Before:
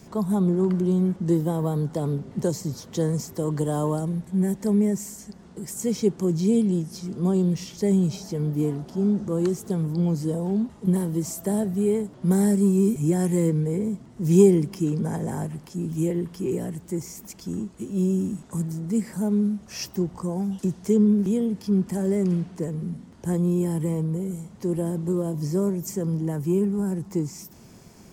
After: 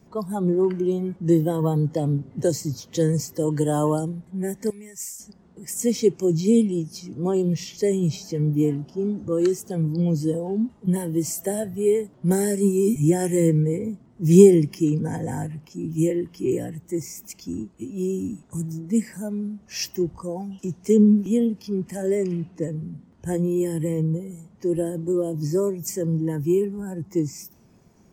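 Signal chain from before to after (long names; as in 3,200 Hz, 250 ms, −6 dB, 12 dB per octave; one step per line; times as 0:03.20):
noise reduction from a noise print of the clip's start 11 dB
0:04.70–0:05.20: guitar amp tone stack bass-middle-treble 10-0-10
one half of a high-frequency compander decoder only
level +4.5 dB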